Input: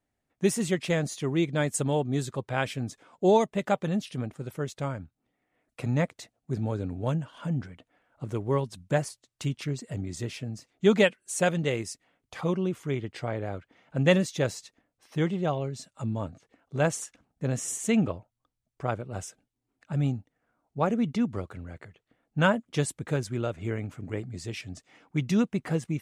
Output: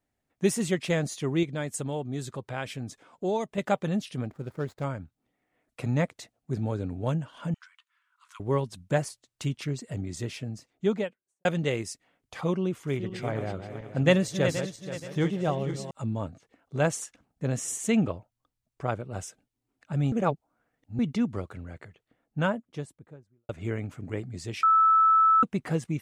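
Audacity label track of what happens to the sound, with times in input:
1.430000	3.580000	downward compressor 1.5 to 1, threshold −37 dBFS
4.250000	4.840000	running median over 15 samples
7.540000	8.400000	Chebyshev high-pass with heavy ripple 980 Hz, ripple 3 dB
10.420000	11.450000	fade out and dull
12.620000	15.910000	feedback delay that plays each chunk backwards 238 ms, feedback 57%, level −8 dB
20.120000	20.990000	reverse
21.820000	23.490000	fade out and dull
24.630000	25.430000	beep over 1,310 Hz −16.5 dBFS

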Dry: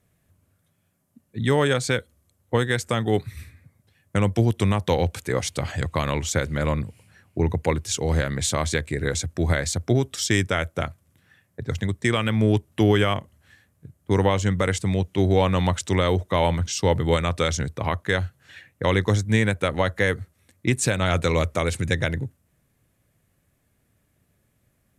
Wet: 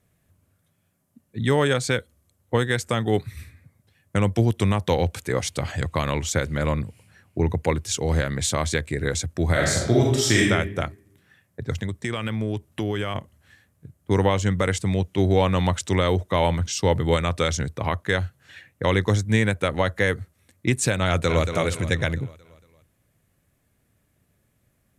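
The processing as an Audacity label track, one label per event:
9.510000	10.480000	thrown reverb, RT60 0.89 s, DRR −3 dB
11.730000	13.150000	downward compressor 3 to 1, threshold −24 dBFS
21.060000	21.510000	delay throw 230 ms, feedback 50%, level −8 dB

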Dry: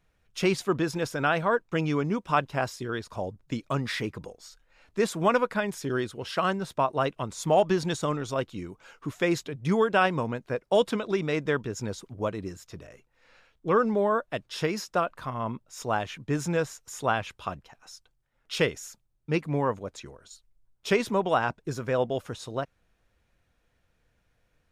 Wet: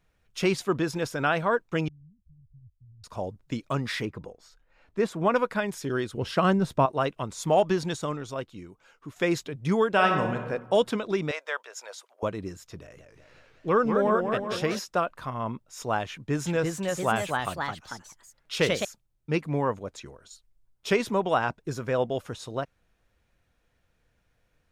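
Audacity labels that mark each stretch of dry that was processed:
1.880000	3.040000	inverse Chebyshev low-pass filter stop band from 510 Hz, stop band 80 dB
4.050000	5.360000	high-shelf EQ 3,100 Hz −11 dB
6.140000	6.860000	low-shelf EQ 420 Hz +10.5 dB
7.670000	9.160000	fade out quadratic, to −7.5 dB
9.910000	10.360000	thrown reverb, RT60 1.1 s, DRR 3.5 dB
11.310000	12.230000	Chebyshev high-pass filter 570 Hz, order 4
12.780000	14.790000	feedback echo with a swinging delay time 187 ms, feedback 61%, depth 184 cents, level −6 dB
16.100000	18.850000	delay with pitch and tempo change per echo 364 ms, each echo +2 semitones, echoes 2

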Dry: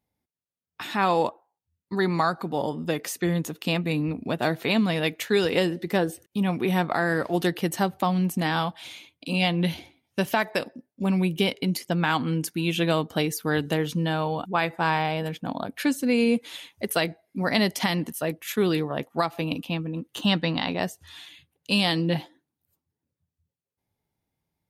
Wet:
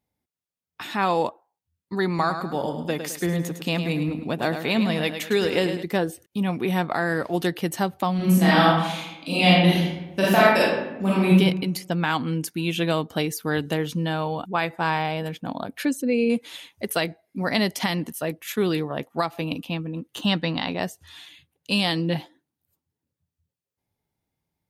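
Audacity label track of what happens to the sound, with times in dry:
2.080000	5.830000	repeating echo 106 ms, feedback 41%, level −8.5 dB
8.160000	11.330000	thrown reverb, RT60 0.96 s, DRR −7.5 dB
15.850000	16.300000	spectral envelope exaggerated exponent 1.5

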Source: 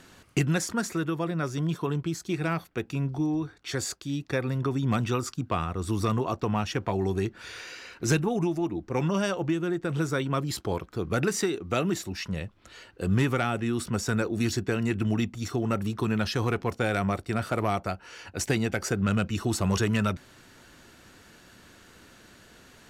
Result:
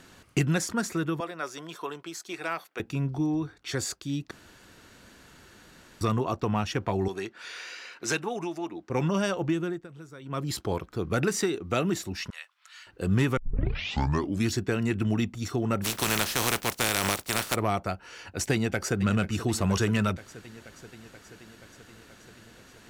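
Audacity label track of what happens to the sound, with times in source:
1.200000	2.800000	high-pass filter 530 Hz
4.310000	6.010000	fill with room tone
7.080000	8.900000	meter weighting curve A
9.600000	10.490000	duck −18 dB, fades 0.28 s
12.300000	12.870000	high-pass filter 1,100 Hz 24 dB per octave
13.370000	13.370000	tape start 1.10 s
15.830000	17.540000	compressing power law on the bin magnitudes exponent 0.32
18.520000	18.970000	delay throw 480 ms, feedback 75%, level −12.5 dB

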